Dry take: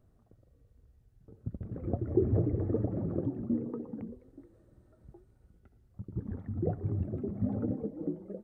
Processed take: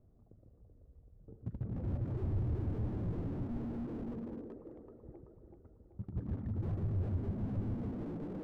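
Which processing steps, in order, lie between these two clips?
low-pass that shuts in the quiet parts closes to 750 Hz, open at −27.5 dBFS
echo with a time of its own for lows and highs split 340 Hz, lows 145 ms, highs 382 ms, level −3.5 dB
slew-rate limiting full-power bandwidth 3 Hz

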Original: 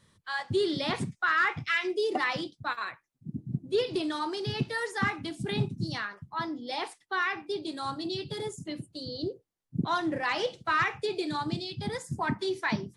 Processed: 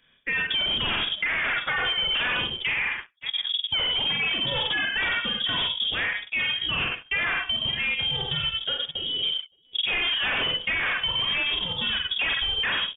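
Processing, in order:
low-shelf EQ 190 Hz −10.5 dB
on a send: multi-tap delay 46/94/108/160/566 ms −4/−6.5/−11.5/−16.5/−18.5 dB
on the sum: leveller curve on the samples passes 2
transient designer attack −2 dB, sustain −6 dB
harmonic generator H 5 −7 dB, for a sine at −12.5 dBFS
downward compressor, threshold −22 dBFS, peak gain reduction 6 dB
voice inversion scrambler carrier 3,500 Hz
level −2 dB

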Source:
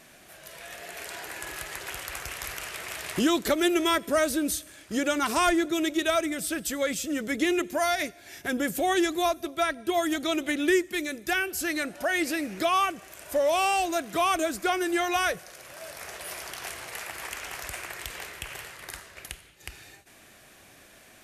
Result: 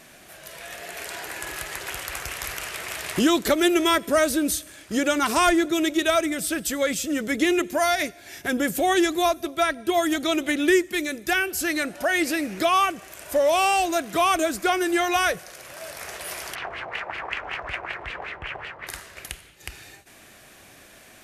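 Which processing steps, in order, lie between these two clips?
0:16.55–0:18.87: auto-filter low-pass sine 5.3 Hz 740–3,000 Hz
level +4 dB

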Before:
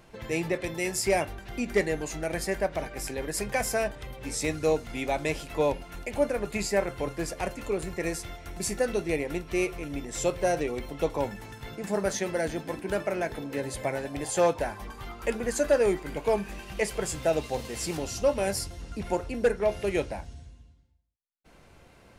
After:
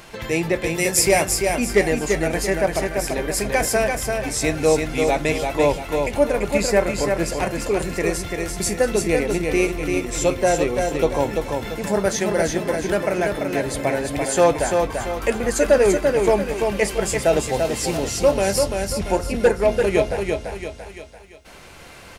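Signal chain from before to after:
0:00.76–0:01.23: high-shelf EQ 6,000 Hz +8.5 dB
repeating echo 340 ms, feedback 37%, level −4.5 dB
one half of a high-frequency compander encoder only
level +7.5 dB

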